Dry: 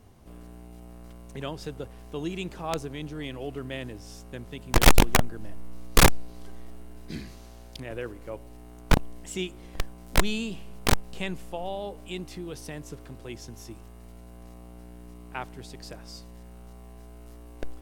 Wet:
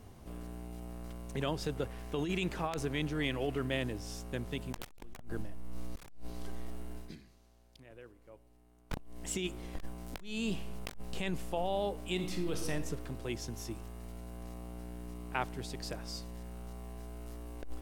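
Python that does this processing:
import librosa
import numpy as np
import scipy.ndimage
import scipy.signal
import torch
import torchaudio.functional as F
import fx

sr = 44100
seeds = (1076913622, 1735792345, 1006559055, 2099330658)

y = fx.peak_eq(x, sr, hz=1900.0, db=4.5, octaves=1.2, at=(1.76, 3.67))
y = fx.reverb_throw(y, sr, start_s=12.14, length_s=0.57, rt60_s=0.92, drr_db=4.0)
y = fx.edit(y, sr, fx.fade_down_up(start_s=6.95, length_s=2.31, db=-19.0, fade_s=0.21), tone=tone)
y = fx.over_compress(y, sr, threshold_db=-33.0, ratio=-1.0)
y = y * 10.0 ** (-4.5 / 20.0)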